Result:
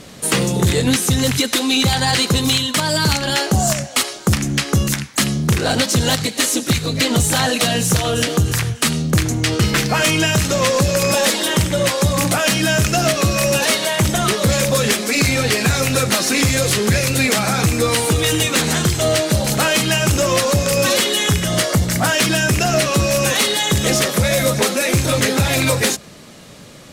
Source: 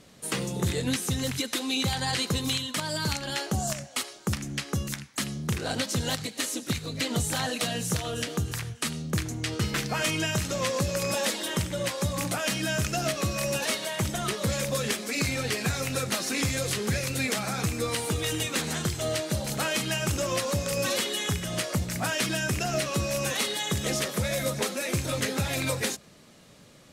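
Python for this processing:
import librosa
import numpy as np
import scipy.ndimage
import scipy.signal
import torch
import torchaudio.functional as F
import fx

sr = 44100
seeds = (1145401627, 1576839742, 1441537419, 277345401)

p1 = fx.notch(x, sr, hz=2500.0, q=12.0, at=(21.48, 22.15))
p2 = fx.rider(p1, sr, range_db=10, speed_s=0.5)
p3 = p1 + F.gain(torch.from_numpy(p2), -2.0).numpy()
p4 = 10.0 ** (-16.0 / 20.0) * np.tanh(p3 / 10.0 ** (-16.0 / 20.0))
y = F.gain(torch.from_numpy(p4), 8.5).numpy()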